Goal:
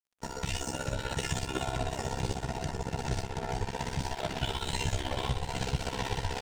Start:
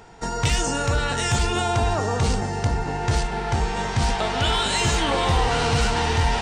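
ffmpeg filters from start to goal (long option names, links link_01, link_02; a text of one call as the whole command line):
ffmpeg -i in.wav -filter_complex "[0:a]asuperstop=centerf=1200:order=8:qfactor=6.8,equalizer=frequency=1300:width=1.6:gain=-4,aecho=1:1:727|1454|2181|2908:0.447|0.161|0.0579|0.0208,tremolo=f=16:d=0.55,asettb=1/sr,asplit=3[link_01][link_02][link_03];[link_01]atrim=end=4.534[link_04];[link_02]atrim=start=4.53:end=5.8,asetpts=PTS-STARTPTS,afade=type=in:duration=0.004:curve=qsin,afade=type=out:start_time=1.266:duration=0.004:curve=qsin,lowshelf=frequency=63:gain=11.5[link_05];[link_03]atrim=start=5.796[link_06];[link_04][link_05]acrossfade=duration=0.004:curve1=hsin:curve2=qsin[link_07];[link_07][link_06]acrossfade=duration=0.004:curve1=qsin:curve2=hsin,acompressor=threshold=-22dB:ratio=4,flanger=delay=7.3:depth=8.6:regen=38:speed=0.72:shape=sinusoidal,aeval=exprs='val(0)*sin(2*PI*33*n/s)':channel_layout=same,aeval=exprs='sgn(val(0))*max(abs(val(0))-0.00473,0)':channel_layout=same,volume=1.5dB" out.wav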